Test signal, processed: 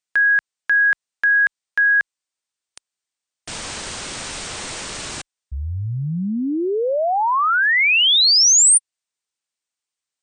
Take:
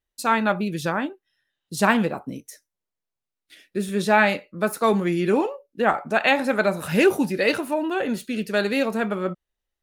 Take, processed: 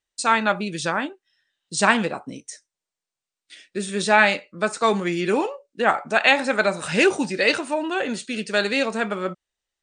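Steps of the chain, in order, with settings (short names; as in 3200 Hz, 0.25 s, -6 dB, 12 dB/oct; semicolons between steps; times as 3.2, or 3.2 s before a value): brick-wall FIR low-pass 9300 Hz; tilt +2 dB/oct; gain +1.5 dB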